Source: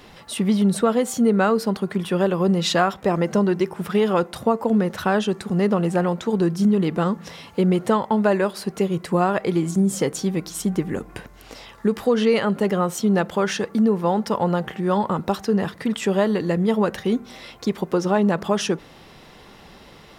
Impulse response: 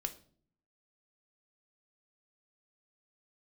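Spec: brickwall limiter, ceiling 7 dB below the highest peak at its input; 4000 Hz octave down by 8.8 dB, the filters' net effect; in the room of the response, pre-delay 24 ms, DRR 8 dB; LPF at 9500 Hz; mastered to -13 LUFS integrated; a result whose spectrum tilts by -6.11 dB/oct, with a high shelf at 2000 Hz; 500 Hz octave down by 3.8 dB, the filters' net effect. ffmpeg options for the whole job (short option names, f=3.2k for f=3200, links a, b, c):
-filter_complex "[0:a]lowpass=9.5k,equalizer=f=500:t=o:g=-4.5,highshelf=f=2k:g=-3.5,equalizer=f=4k:t=o:g=-8,alimiter=limit=-16dB:level=0:latency=1,asplit=2[a][b];[1:a]atrim=start_sample=2205,adelay=24[c];[b][c]afir=irnorm=-1:irlink=0,volume=-7.5dB[d];[a][d]amix=inputs=2:normalize=0,volume=12dB"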